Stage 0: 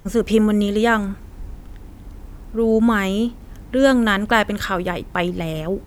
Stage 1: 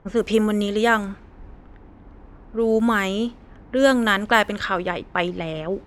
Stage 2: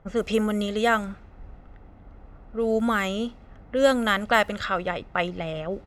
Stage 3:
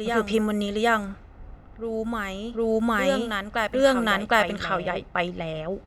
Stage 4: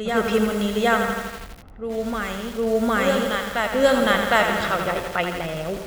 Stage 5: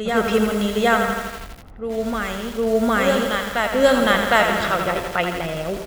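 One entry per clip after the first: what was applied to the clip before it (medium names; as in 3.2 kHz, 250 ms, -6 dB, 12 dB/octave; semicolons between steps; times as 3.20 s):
level-controlled noise filter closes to 1.4 kHz, open at -12.5 dBFS; bass shelf 210 Hz -9.5 dB
comb 1.5 ms, depth 37%; trim -3.5 dB
reverse echo 758 ms -5.5 dB
on a send at -12 dB: reverberation RT60 0.75 s, pre-delay 117 ms; on the sum: bit-crushed delay 83 ms, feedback 80%, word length 6-bit, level -6.5 dB; trim +1.5 dB
delay 86 ms -16.5 dB; trim +2 dB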